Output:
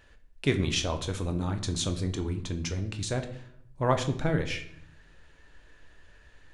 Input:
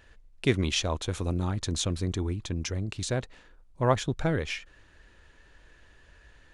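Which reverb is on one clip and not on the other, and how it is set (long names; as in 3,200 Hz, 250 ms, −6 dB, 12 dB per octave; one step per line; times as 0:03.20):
rectangular room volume 120 cubic metres, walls mixed, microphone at 0.42 metres
level −1.5 dB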